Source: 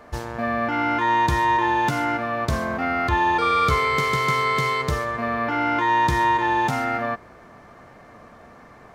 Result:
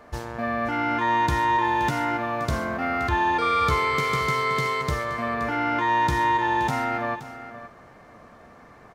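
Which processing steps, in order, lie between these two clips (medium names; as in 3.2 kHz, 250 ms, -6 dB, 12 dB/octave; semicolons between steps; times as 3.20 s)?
1.64–3.10 s: short-mantissa float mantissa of 6-bit; delay 523 ms -13 dB; trim -2.5 dB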